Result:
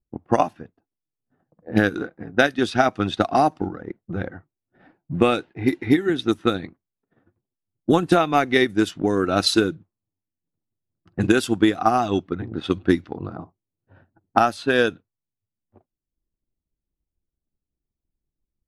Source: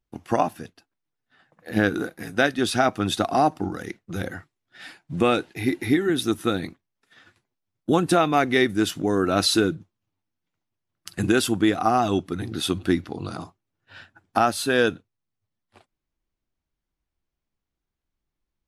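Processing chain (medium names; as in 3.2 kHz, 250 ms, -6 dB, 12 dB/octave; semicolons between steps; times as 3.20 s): transient shaper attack +5 dB, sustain -5 dB; level-controlled noise filter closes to 470 Hz, open at -14.5 dBFS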